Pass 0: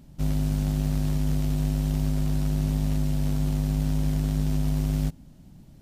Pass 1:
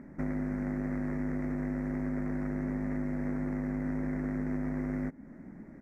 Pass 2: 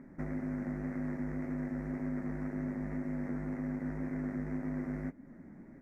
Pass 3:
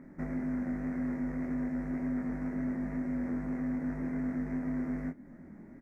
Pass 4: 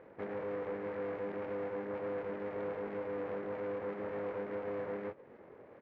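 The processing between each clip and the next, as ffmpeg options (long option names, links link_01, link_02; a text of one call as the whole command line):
ffmpeg -i in.wav -af "firequalizer=gain_entry='entry(140,0);entry(210,12);entry(770,2);entry(2000,13);entry(3000,-27);entry(5700,-9);entry(12000,-15)':delay=0.05:min_phase=1,acompressor=threshold=-29dB:ratio=2.5,bass=frequency=250:gain=-10,treble=frequency=4000:gain=-9,volume=2dB" out.wav
ffmpeg -i in.wav -af "flanger=delay=7.2:depth=6.5:regen=-35:speed=1.9:shape=sinusoidal" out.wav
ffmpeg -i in.wav -filter_complex "[0:a]asplit=2[link_01][link_02];[link_02]adelay=24,volume=-3.5dB[link_03];[link_01][link_03]amix=inputs=2:normalize=0" out.wav
ffmpeg -i in.wav -af "aeval=exprs='abs(val(0))':channel_layout=same,highpass=190,lowpass=2200,volume=1.5dB" out.wav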